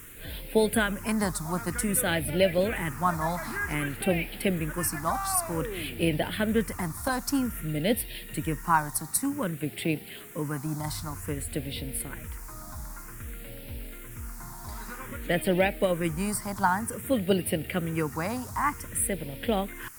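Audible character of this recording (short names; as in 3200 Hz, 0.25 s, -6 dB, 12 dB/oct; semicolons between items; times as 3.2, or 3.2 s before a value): a quantiser's noise floor 8-bit, dither triangular; phasing stages 4, 0.53 Hz, lowest notch 470–1100 Hz; Opus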